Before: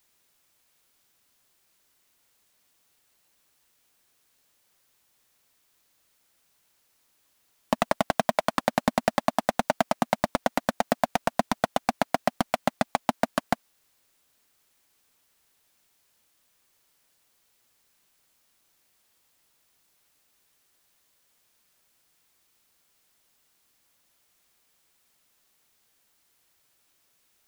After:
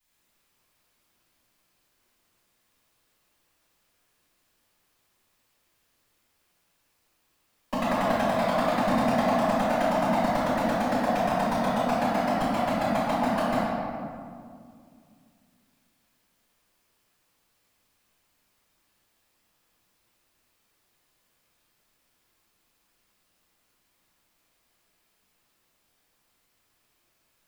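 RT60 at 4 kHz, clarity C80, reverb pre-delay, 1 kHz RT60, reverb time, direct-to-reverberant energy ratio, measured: 1.2 s, -2.0 dB, 3 ms, 2.0 s, 2.2 s, -15.5 dB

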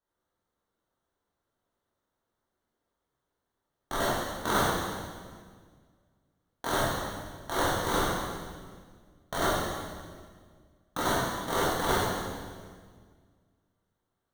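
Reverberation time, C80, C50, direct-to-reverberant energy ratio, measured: 1.7 s, 0.0 dB, -2.5 dB, -9.0 dB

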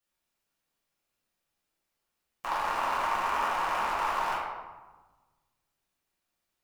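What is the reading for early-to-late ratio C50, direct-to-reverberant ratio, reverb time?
-0.5 dB, -8.5 dB, 1.3 s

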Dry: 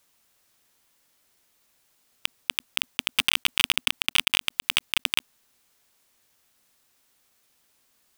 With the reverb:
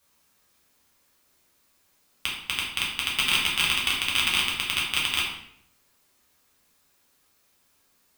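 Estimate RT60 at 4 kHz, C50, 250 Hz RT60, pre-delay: 0.55 s, 3.0 dB, 0.80 s, 5 ms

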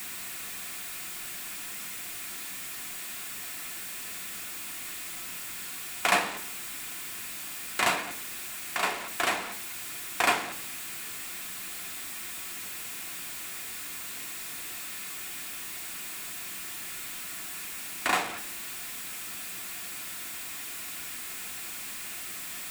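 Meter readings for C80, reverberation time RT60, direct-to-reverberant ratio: 17.0 dB, 0.70 s, 5.5 dB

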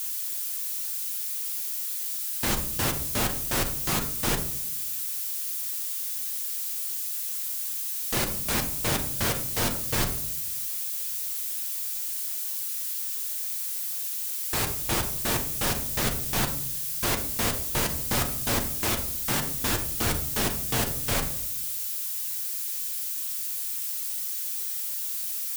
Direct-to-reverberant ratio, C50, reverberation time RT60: 3.5 dB, 10.0 dB, 0.70 s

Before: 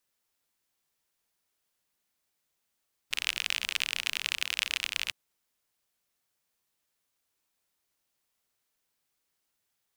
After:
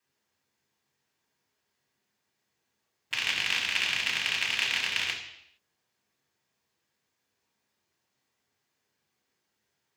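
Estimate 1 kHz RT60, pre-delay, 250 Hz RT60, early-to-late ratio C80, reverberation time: 0.75 s, 3 ms, 0.75 s, 9.0 dB, 0.75 s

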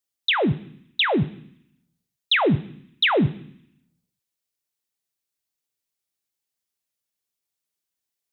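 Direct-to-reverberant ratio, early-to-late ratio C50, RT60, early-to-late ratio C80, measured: 10.5 dB, 19.0 dB, 0.65 s, 21.5 dB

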